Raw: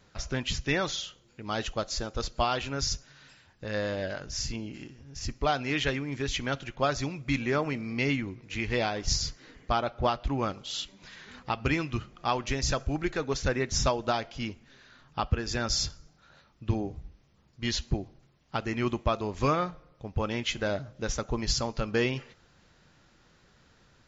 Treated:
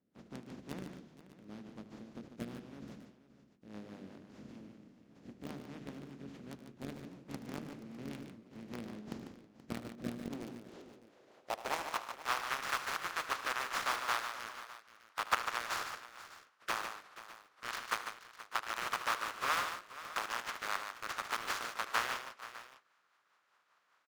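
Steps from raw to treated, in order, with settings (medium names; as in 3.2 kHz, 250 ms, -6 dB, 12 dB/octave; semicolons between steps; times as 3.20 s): spectral contrast reduction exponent 0.13; hum notches 50/100/150/200/250/300/350/400/450 Hz; band-pass sweep 220 Hz -> 1.2 kHz, 10.24–12.13 s; in parallel at -3.5 dB: word length cut 6-bit, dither none; on the sum: rotary cabinet horn 5 Hz; on a send: multi-tap echo 76/109/147/478/603 ms -14.5/-17.5/-8/-15.5/-17.5 dB; on the sum: trim +1.5 dB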